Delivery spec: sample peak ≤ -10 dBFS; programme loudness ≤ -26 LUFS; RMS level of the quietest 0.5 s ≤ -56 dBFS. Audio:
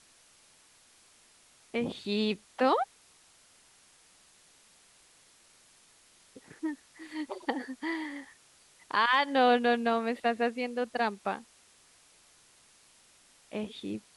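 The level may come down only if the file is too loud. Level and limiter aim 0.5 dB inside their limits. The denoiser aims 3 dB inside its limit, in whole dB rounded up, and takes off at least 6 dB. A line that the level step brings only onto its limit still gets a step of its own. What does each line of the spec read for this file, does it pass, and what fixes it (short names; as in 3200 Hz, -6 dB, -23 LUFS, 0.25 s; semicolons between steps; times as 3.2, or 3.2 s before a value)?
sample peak -12.5 dBFS: OK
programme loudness -30.5 LUFS: OK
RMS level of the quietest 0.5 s -62 dBFS: OK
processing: none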